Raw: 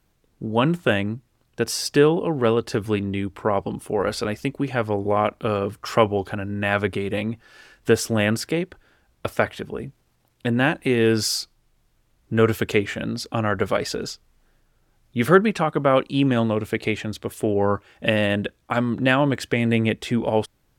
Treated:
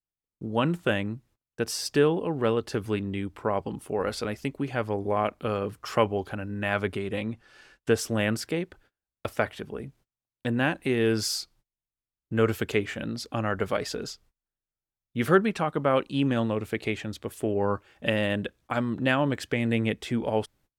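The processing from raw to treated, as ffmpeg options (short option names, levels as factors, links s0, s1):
-filter_complex "[0:a]asettb=1/sr,asplit=3[s0][s1][s2];[s0]atrim=end=6.994[s3];[s1]atrim=start=6.99:end=7.98,asetpts=PTS-STARTPTS,afade=t=in:d=0.004:c=qsin,afade=t=out:st=0.986:d=0.004:c=qsin,lowpass=11000[s4];[s2]atrim=start=7.976[s5];[s3][s4]acrossfade=d=0.004:c1=hsin:c2=qsin[s6];[s6][s5]acrossfade=d=0.004:c1=qsin:c2=hsin,agate=range=0.0398:threshold=0.00282:ratio=16:detection=peak,volume=0.531"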